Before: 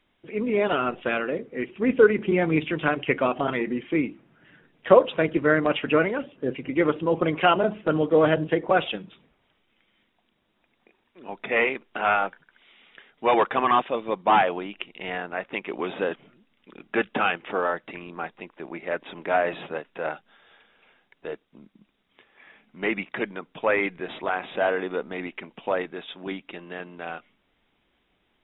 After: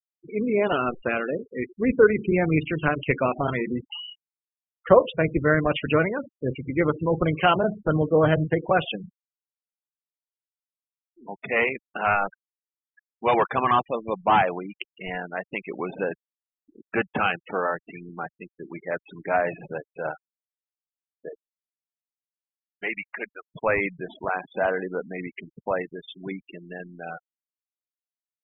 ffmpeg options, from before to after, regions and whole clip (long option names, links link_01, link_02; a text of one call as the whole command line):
ffmpeg -i in.wav -filter_complex "[0:a]asettb=1/sr,asplit=3[link_01][link_02][link_03];[link_01]atrim=end=3.864[link_04];[link_02]atrim=start=3.86:end=4.87,asetpts=PTS-STARTPTS,afade=type=in:duration=0.004:curve=qsin,afade=type=out:start_time=1.006:duration=0.004:curve=qsin,equalizer=frequency=1100:width_type=o:width=0.31:gain=15,acompressor=threshold=-32dB:ratio=12:attack=3.2:release=140:knee=1:detection=peak,lowpass=frequency=2700:width_type=q:width=0.5098,lowpass=frequency=2700:width_type=q:width=0.6013,lowpass=frequency=2700:width_type=q:width=0.9,lowpass=frequency=2700:width_type=q:width=2.563,afreqshift=-3200[link_05];[link_03]atrim=start=4.866[link_06];[link_04][link_05]acrossfade=duration=0.004:curve1=hsin:curve2=qsin[link_07];[link_07][link_06]acrossfade=duration=0.004:curve1=qsin:curve2=hsin,asettb=1/sr,asplit=3[link_08][link_09][link_10];[link_08]atrim=end=21.294[link_11];[link_09]atrim=start=21.29:end=23.49,asetpts=PTS-STARTPTS,afade=type=in:duration=0.004:curve=qsin,afade=type=out:start_time=2.196:duration=0.004:curve=qsin,highpass=frequency=780:poles=1,aecho=1:1:366:0.0841,atrim=end_sample=97020[link_12];[link_10]atrim=start=23.486[link_13];[link_11][link_12]acrossfade=duration=0.004:curve1=hsin:curve2=qsin[link_14];[link_14][link_13]acrossfade=duration=0.004:curve1=qsin:curve2=hsin,lowshelf=frequency=270:gain=4,afftfilt=real='re*gte(hypot(re,im),0.0398)':imag='im*gte(hypot(re,im),0.0398)':win_size=1024:overlap=0.75,asubboost=boost=5:cutoff=110" out.wav